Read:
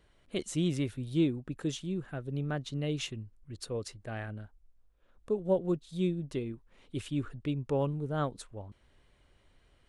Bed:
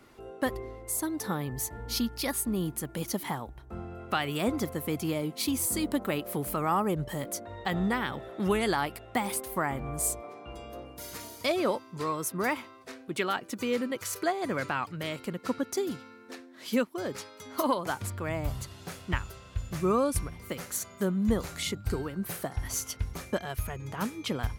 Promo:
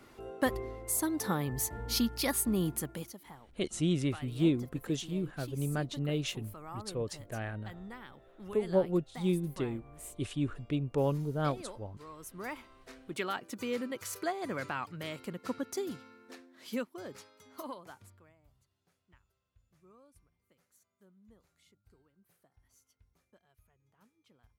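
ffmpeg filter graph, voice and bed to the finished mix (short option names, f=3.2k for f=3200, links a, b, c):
-filter_complex "[0:a]adelay=3250,volume=0.5dB[a];[1:a]volume=12.5dB,afade=t=out:st=2.76:d=0.38:silence=0.125893,afade=t=in:st=12.1:d=1.07:silence=0.237137,afade=t=out:st=16.08:d=2.27:silence=0.0334965[b];[a][b]amix=inputs=2:normalize=0"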